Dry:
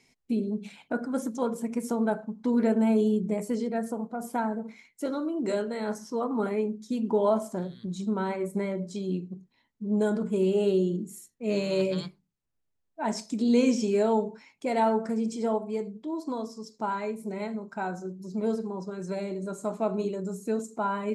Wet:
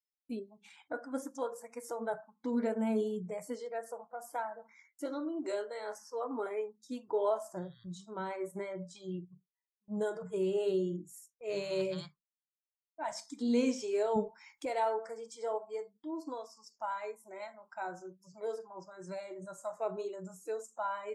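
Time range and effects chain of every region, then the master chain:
14.16–14.66 low shelf 220 Hz +9 dB + mismatched tape noise reduction encoder only
whole clip: spectral noise reduction 25 dB; gate with hold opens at -49 dBFS; gain -6.5 dB

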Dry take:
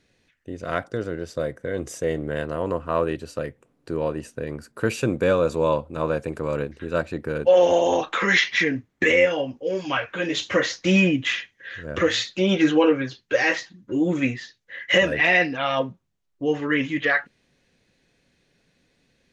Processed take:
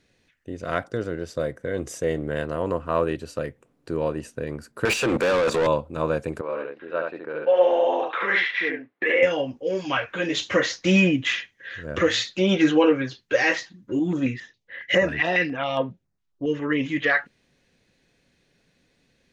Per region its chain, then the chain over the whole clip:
4.85–5.67 HPF 75 Hz 24 dB/oct + level quantiser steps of 16 dB + overdrive pedal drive 32 dB, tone 4200 Hz, clips at -13 dBFS
6.41–9.23 HPF 470 Hz + air absorption 390 m + echo 72 ms -3.5 dB
13.99–16.86 air absorption 72 m + stepped notch 7.3 Hz 530–6400 Hz
whole clip: dry

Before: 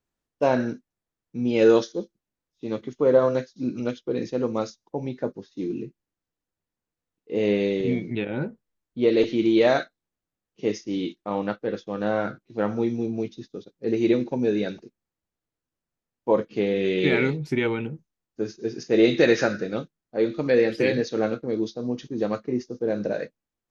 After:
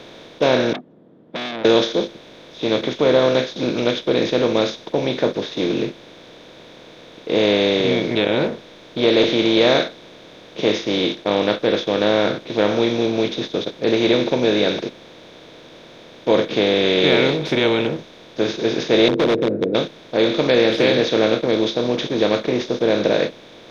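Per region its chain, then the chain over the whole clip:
0.73–1.65 compressor, threshold -34 dBFS + Butterworth band-pass 210 Hz, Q 1.8 + core saturation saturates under 1800 Hz
19.08–19.75 Chebyshev band-pass 100–460 Hz, order 4 + overloaded stage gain 21 dB
whole clip: per-bin compression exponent 0.4; bell 3500 Hz +13.5 dB 0.44 oct; gain -1 dB

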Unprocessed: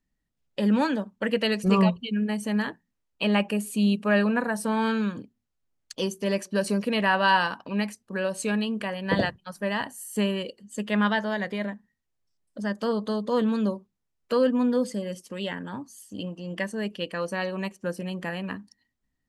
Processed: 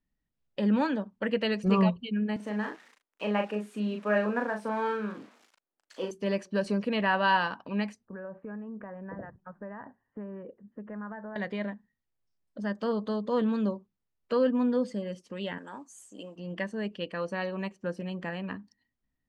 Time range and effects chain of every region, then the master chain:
2.36–6.11 switching spikes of -26.5 dBFS + three-band isolator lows -23 dB, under 230 Hz, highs -13 dB, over 2300 Hz + doubler 38 ms -5 dB
8.05–11.36 compressor 4:1, threshold -35 dBFS + steep low-pass 1700 Hz
15.58–16.36 HPF 370 Hz + resonant high shelf 5800 Hz +9 dB, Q 3 + modulation noise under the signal 30 dB
whole clip: LPF 6200 Hz 12 dB/oct; high shelf 4000 Hz -7 dB; gain -3 dB

